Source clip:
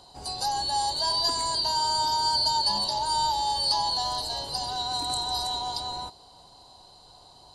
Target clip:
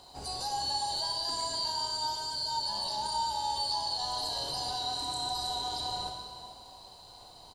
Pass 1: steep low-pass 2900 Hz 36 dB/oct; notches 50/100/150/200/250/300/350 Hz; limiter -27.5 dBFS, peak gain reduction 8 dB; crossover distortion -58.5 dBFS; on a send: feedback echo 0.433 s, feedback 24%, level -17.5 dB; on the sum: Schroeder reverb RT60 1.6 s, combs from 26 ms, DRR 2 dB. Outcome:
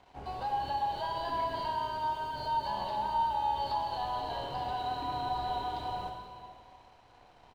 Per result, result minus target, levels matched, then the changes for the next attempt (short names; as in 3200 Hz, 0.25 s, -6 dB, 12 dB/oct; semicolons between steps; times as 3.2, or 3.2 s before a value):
4000 Hz band -11.0 dB; crossover distortion: distortion +6 dB
remove: steep low-pass 2900 Hz 36 dB/oct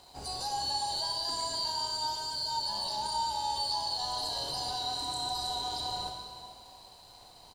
crossover distortion: distortion +7 dB
change: crossover distortion -65.5 dBFS